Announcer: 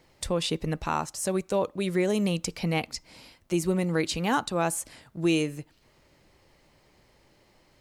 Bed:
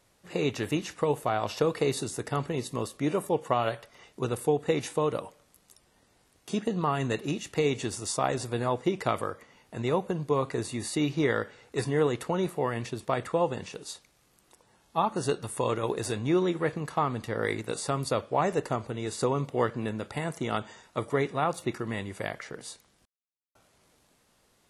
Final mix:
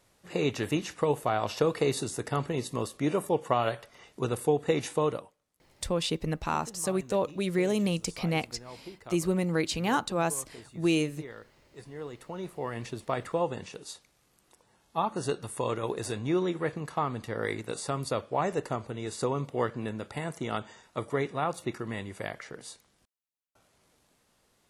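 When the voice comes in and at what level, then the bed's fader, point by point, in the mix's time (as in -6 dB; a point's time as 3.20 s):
5.60 s, -1.5 dB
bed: 5.10 s 0 dB
5.37 s -18 dB
11.82 s -18 dB
12.88 s -2.5 dB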